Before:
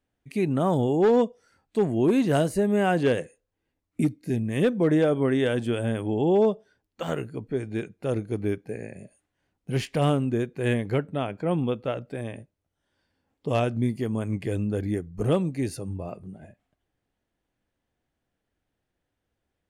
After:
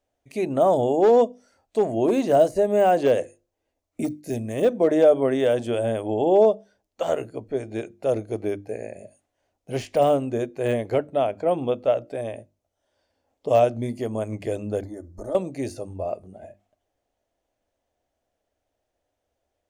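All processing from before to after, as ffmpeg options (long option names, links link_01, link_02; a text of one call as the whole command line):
ffmpeg -i in.wav -filter_complex "[0:a]asettb=1/sr,asplit=3[link_01][link_02][link_03];[link_01]atrim=end=4.044[link_04];[link_02]atrim=start=4.04:end=4.67,asetpts=PTS-STARTPTS,afade=type=in:duration=0.004:curve=qsin,afade=type=out:start_time=0.626:duration=0.004:curve=qsin,agate=range=-13dB:threshold=-55dB:ratio=16:release=100:detection=peak,highshelf=frequency=4500:gain=9[link_05];[link_03]atrim=start=4.666[link_06];[link_04][link_05]acrossfade=duration=0.004:curve1=hsin:curve2=qsin[link_07];[link_07][link_06]acrossfade=duration=0.004:curve1=qsin:curve2=hsin,asettb=1/sr,asplit=3[link_08][link_09][link_10];[link_08]atrim=end=14.834[link_11];[link_09]atrim=start=14.83:end=15.35,asetpts=PTS-STARTPTS,afade=type=in:duration=0.004:curve=qsin,afade=type=out:start_time=0.516:duration=0.004:curve=qsin,aecho=1:1:3.4:0.71,atrim=end_sample=22932,acompressor=threshold=-32dB:ratio=8:attack=3.2:release=140:knee=1:detection=peak,asuperstop=centerf=2700:order=4:qfactor=1.4[link_12];[link_10]atrim=start=15.346[link_13];[link_11][link_12]acrossfade=duration=0.004:curve1=hsin:curve2=qsin[link_14];[link_14][link_13]acrossfade=duration=0.004:curve1=qsin:curve2=hsin,bandreject=frequency=50:width_type=h:width=6,bandreject=frequency=100:width_type=h:width=6,bandreject=frequency=150:width_type=h:width=6,bandreject=frequency=200:width_type=h:width=6,bandreject=frequency=250:width_type=h:width=6,bandreject=frequency=300:width_type=h:width=6,bandreject=frequency=350:width_type=h:width=6,deesser=0.95,equalizer=frequency=160:width_type=o:width=0.67:gain=-10,equalizer=frequency=630:width_type=o:width=0.67:gain=12,equalizer=frequency=1600:width_type=o:width=0.67:gain=-3,equalizer=frequency=6300:width_type=o:width=0.67:gain=6" out.wav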